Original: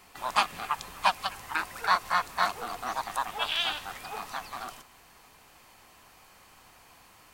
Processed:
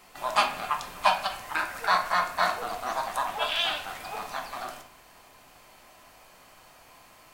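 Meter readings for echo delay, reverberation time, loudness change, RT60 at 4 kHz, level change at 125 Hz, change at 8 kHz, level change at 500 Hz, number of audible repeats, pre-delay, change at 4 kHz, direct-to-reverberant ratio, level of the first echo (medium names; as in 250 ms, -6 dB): no echo, 0.45 s, +2.0 dB, 0.40 s, +1.0 dB, +1.0 dB, +6.5 dB, no echo, 3 ms, +1.5 dB, 3.0 dB, no echo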